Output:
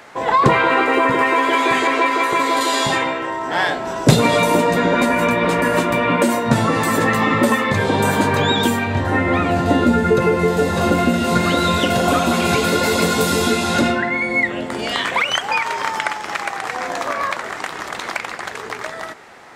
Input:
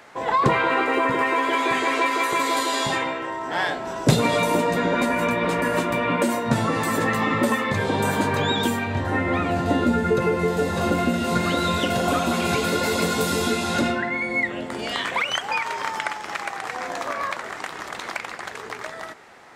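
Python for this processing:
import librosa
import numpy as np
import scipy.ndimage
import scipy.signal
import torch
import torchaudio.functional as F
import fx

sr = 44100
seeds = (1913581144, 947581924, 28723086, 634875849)

y = fx.high_shelf(x, sr, hz=4400.0, db=-8.0, at=(1.87, 2.61))
y = F.gain(torch.from_numpy(y), 5.5).numpy()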